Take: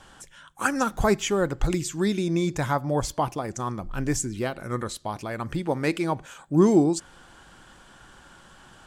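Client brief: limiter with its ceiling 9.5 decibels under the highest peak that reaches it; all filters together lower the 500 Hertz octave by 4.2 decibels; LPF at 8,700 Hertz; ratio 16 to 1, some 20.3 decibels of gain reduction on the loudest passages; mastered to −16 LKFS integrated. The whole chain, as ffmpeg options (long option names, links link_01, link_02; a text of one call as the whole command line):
ffmpeg -i in.wav -af "lowpass=8700,equalizer=frequency=500:width_type=o:gain=-6,acompressor=threshold=-36dB:ratio=16,volume=28dB,alimiter=limit=-5dB:level=0:latency=1" out.wav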